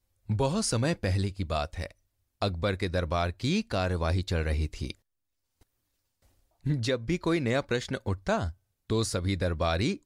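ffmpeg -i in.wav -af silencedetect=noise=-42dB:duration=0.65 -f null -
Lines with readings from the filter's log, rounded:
silence_start: 4.91
silence_end: 6.66 | silence_duration: 1.74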